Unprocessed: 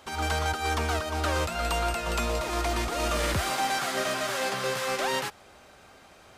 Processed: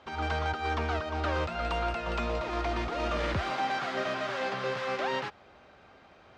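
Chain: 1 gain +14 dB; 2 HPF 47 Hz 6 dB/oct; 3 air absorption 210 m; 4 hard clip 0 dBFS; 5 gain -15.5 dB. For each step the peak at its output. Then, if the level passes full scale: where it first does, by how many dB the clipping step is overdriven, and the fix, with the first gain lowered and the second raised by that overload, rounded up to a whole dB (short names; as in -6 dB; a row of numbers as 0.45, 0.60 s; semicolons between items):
-5.0, -3.5, -5.0, -5.0, -20.5 dBFS; no overload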